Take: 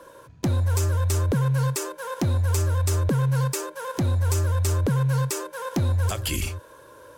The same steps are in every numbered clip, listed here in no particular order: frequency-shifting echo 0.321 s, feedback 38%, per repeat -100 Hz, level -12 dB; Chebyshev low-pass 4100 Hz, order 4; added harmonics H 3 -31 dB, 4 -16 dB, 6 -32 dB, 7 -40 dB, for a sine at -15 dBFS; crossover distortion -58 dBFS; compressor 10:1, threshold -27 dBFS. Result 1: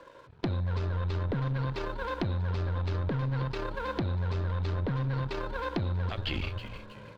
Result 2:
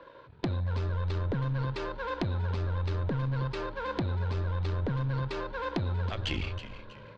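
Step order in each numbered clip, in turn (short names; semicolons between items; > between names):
frequency-shifting echo > added harmonics > Chebyshev low-pass > crossover distortion > compressor; crossover distortion > Chebyshev low-pass > compressor > added harmonics > frequency-shifting echo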